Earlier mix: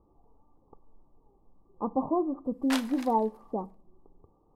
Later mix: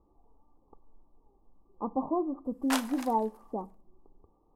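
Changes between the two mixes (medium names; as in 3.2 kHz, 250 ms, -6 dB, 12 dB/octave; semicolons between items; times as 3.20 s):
background +5.5 dB; master: add graphic EQ 125/500/2000/4000 Hz -9/-3/-5/-6 dB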